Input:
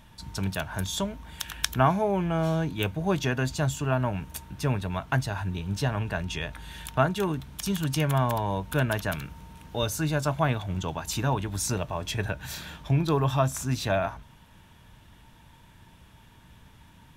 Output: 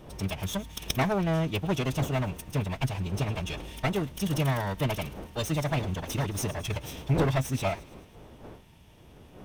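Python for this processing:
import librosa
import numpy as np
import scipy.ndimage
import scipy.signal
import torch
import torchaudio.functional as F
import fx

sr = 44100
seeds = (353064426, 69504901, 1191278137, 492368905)

y = fx.lower_of_two(x, sr, delay_ms=0.33)
y = fx.dmg_wind(y, sr, seeds[0], corner_hz=480.0, level_db=-42.0)
y = fx.echo_wet_highpass(y, sr, ms=197, feedback_pct=61, hz=3000.0, wet_db=-16)
y = fx.stretch_vocoder(y, sr, factor=0.55)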